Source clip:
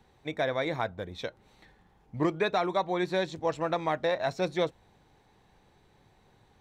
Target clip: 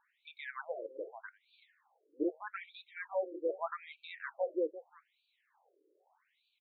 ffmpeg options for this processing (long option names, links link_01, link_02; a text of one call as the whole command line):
ffmpeg -i in.wav -filter_complex "[0:a]acrossover=split=3000[link_01][link_02];[link_02]acompressor=threshold=-55dB:ratio=4:attack=1:release=60[link_03];[link_01][link_03]amix=inputs=2:normalize=0,asplit=2[link_04][link_05];[link_05]adelay=344,volume=-14dB,highshelf=frequency=4000:gain=-7.74[link_06];[link_04][link_06]amix=inputs=2:normalize=0,afftfilt=real='re*between(b*sr/1024,390*pow(3300/390,0.5+0.5*sin(2*PI*0.81*pts/sr))/1.41,390*pow(3300/390,0.5+0.5*sin(2*PI*0.81*pts/sr))*1.41)':imag='im*between(b*sr/1024,390*pow(3300/390,0.5+0.5*sin(2*PI*0.81*pts/sr))/1.41,390*pow(3300/390,0.5+0.5*sin(2*PI*0.81*pts/sr))*1.41)':win_size=1024:overlap=0.75,volume=-3dB" out.wav